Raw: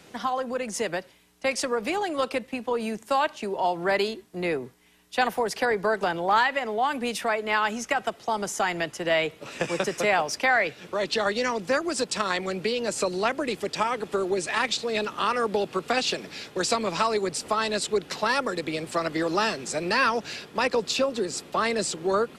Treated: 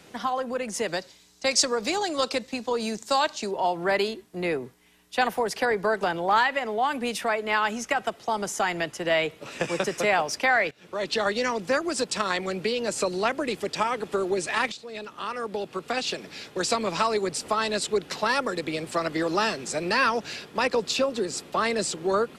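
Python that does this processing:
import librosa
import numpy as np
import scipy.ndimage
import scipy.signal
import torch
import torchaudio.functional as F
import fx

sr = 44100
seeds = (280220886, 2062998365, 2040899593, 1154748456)

y = fx.band_shelf(x, sr, hz=5400.0, db=10.5, octaves=1.3, at=(0.88, 3.51))
y = fx.edit(y, sr, fx.fade_in_from(start_s=10.71, length_s=0.56, curve='qsin', floor_db=-18.5),
    fx.fade_in_from(start_s=14.72, length_s=2.13, floor_db=-13.0), tone=tone)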